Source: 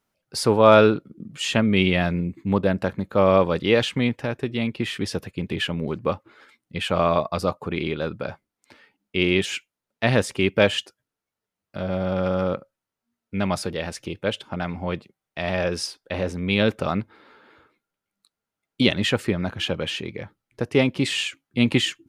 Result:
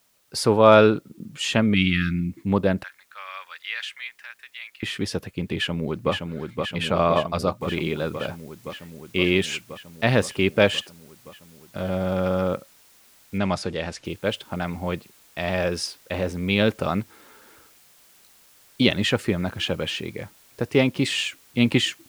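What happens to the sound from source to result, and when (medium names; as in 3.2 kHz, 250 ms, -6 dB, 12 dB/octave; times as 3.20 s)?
1.74–2.32 s: brick-wall FIR band-stop 350–1200 Hz
2.83–4.83 s: ladder high-pass 1.4 kHz, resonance 40%
5.54–6.13 s: echo throw 520 ms, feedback 80%, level -4.5 dB
7.61 s: noise floor step -65 dB -55 dB
13.38–14.05 s: low-pass 7 kHz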